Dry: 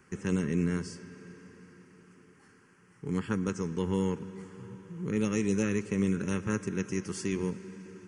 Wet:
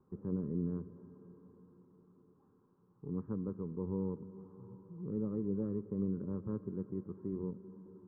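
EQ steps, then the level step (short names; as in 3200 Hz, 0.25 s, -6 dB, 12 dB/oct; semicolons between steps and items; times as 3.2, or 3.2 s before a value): elliptic low-pass 1100 Hz, stop band 70 dB; dynamic EQ 860 Hz, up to -6 dB, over -53 dBFS, Q 1.7; air absorption 470 m; -6.0 dB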